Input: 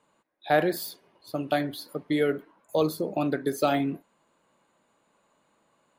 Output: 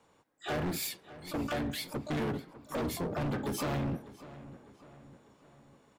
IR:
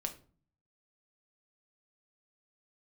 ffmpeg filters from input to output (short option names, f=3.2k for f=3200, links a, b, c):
-filter_complex "[0:a]acontrast=69,asplit=4[a][b][c][d];[b]asetrate=22050,aresample=44100,atempo=2,volume=-3dB[e];[c]asetrate=35002,aresample=44100,atempo=1.25992,volume=-4dB[f];[d]asetrate=88200,aresample=44100,atempo=0.5,volume=-15dB[g];[a][e][f][g]amix=inputs=4:normalize=0,acrossover=split=230[h][i];[i]acompressor=threshold=-21dB:ratio=3[j];[h][j]amix=inputs=2:normalize=0,asoftclip=type=hard:threshold=-23.5dB,asplit=2[k][l];[l]adelay=601,lowpass=f=3.7k:p=1,volume=-16.5dB,asplit=2[m][n];[n]adelay=601,lowpass=f=3.7k:p=1,volume=0.51,asplit=2[o][p];[p]adelay=601,lowpass=f=3.7k:p=1,volume=0.51,asplit=2[q][r];[r]adelay=601,lowpass=f=3.7k:p=1,volume=0.51,asplit=2[s][t];[t]adelay=601,lowpass=f=3.7k:p=1,volume=0.51[u];[m][o][q][s][u]amix=inputs=5:normalize=0[v];[k][v]amix=inputs=2:normalize=0,volume=-7dB"